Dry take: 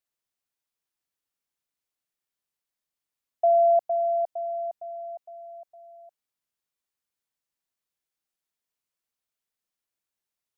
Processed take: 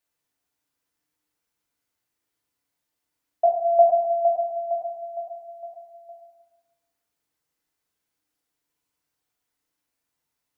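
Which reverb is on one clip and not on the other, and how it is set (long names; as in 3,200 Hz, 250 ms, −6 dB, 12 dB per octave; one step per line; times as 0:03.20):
feedback delay network reverb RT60 1.1 s, low-frequency decay 1.5×, high-frequency decay 0.35×, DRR −3 dB
level +3.5 dB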